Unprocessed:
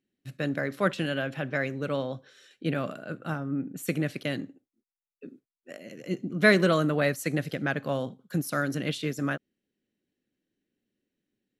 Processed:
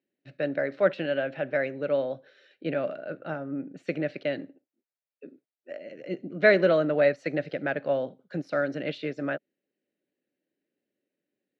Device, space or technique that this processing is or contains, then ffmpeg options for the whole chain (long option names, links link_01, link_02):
kitchen radio: -af "highpass=210,equalizer=frequency=220:width_type=q:width=4:gain=-6,equalizer=frequency=590:width_type=q:width=4:gain=8,equalizer=frequency=1100:width_type=q:width=4:gain=-9,equalizer=frequency=3300:width_type=q:width=4:gain=-7,lowpass=frequency=3900:width=0.5412,lowpass=frequency=3900:width=1.3066"